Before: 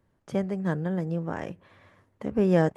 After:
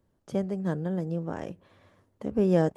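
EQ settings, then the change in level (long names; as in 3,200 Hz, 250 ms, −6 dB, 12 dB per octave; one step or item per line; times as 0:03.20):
octave-band graphic EQ 125/1,000/2,000 Hz −3/−3/−7 dB
0.0 dB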